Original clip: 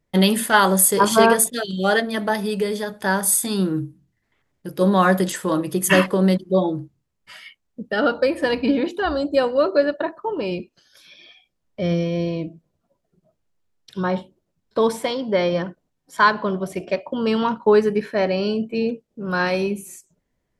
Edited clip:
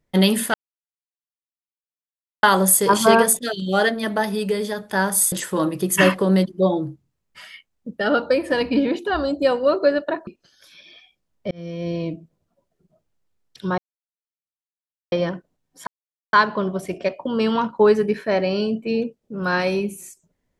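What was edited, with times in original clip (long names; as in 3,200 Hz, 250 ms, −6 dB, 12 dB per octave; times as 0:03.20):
0:00.54: splice in silence 1.89 s
0:03.43–0:05.24: remove
0:10.19–0:10.60: remove
0:11.84–0:12.37: fade in
0:14.11–0:15.45: silence
0:16.20: splice in silence 0.46 s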